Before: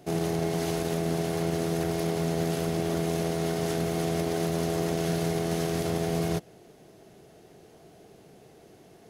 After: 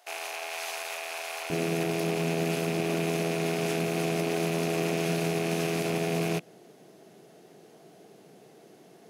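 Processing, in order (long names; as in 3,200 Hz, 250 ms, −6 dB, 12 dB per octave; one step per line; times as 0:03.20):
loose part that buzzes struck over −41 dBFS, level −26 dBFS
high-pass filter 730 Hz 24 dB per octave, from 0:01.50 150 Hz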